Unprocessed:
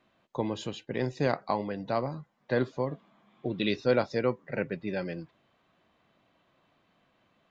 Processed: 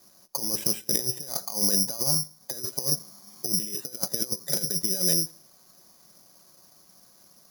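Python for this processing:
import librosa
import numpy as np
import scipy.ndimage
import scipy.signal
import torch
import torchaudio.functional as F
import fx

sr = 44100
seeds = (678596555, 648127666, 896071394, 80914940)

p1 = scipy.signal.sosfilt(scipy.signal.butter(2, 1700.0, 'lowpass', fs=sr, output='sos'), x)
p2 = p1 + 0.4 * np.pad(p1, (int(5.4 * sr / 1000.0), 0))[:len(p1)]
p3 = fx.over_compress(p2, sr, threshold_db=-34.0, ratio=-0.5)
p4 = p3 + fx.echo_feedback(p3, sr, ms=85, feedback_pct=32, wet_db=-22.5, dry=0)
p5 = (np.kron(p4[::8], np.eye(8)[0]) * 8)[:len(p4)]
y = p5 * librosa.db_to_amplitude(-1.0)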